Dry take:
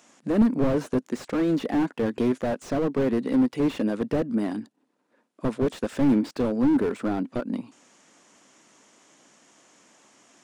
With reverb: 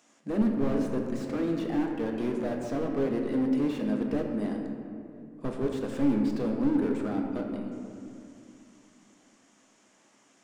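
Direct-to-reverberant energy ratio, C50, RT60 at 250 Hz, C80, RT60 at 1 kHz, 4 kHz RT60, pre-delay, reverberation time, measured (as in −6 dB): 1.5 dB, 3.5 dB, 3.4 s, 4.5 dB, 2.4 s, 1.3 s, 3 ms, 2.5 s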